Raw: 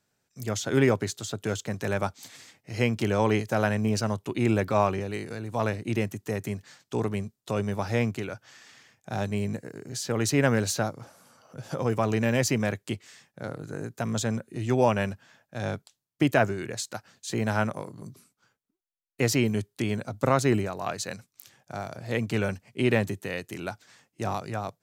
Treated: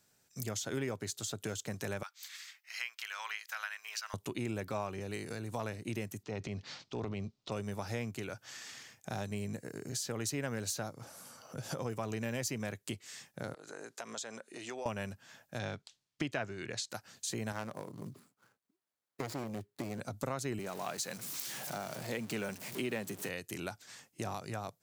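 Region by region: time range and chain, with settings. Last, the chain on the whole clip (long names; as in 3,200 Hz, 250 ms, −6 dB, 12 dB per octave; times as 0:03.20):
0:02.03–0:04.14: high-pass filter 1,300 Hz 24 dB per octave + parametric band 9,100 Hz −11.5 dB 1.4 octaves
0:06.23–0:07.52: low-pass filter 4,900 Hz 24 dB per octave + parametric band 1,700 Hz −8 dB 0.32 octaves + transient designer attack −7 dB, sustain +6 dB
0:13.54–0:14.86: band-pass filter 490–7,500 Hz + downward compressor 2 to 1, threshold −47 dBFS
0:15.59–0:16.90: low-pass filter 3,500 Hz + high-shelf EQ 2,600 Hz +10.5 dB
0:17.52–0:20.00: running median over 15 samples + high-pass filter 130 Hz 6 dB per octave + saturating transformer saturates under 910 Hz
0:20.59–0:23.29: converter with a step at zero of −37.5 dBFS + high-pass filter 140 Hz 24 dB per octave
whole clip: high-shelf EQ 4,300 Hz +8.5 dB; downward compressor 3 to 1, threshold −40 dBFS; level +1 dB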